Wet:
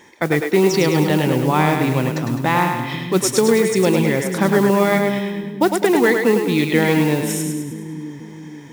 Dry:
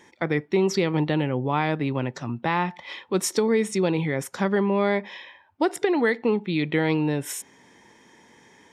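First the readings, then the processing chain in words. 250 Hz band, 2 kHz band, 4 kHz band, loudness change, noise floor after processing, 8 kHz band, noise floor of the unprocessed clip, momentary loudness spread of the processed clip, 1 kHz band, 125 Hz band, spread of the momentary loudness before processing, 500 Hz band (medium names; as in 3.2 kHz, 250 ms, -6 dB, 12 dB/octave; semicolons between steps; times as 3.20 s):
+7.5 dB, +7.5 dB, +8.0 dB, +7.0 dB, -36 dBFS, +8.5 dB, -56 dBFS, 12 LU, +7.5 dB, +7.5 dB, 7 LU, +7.5 dB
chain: modulation noise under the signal 21 dB; two-band feedback delay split 310 Hz, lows 488 ms, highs 104 ms, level -5 dB; trim +6 dB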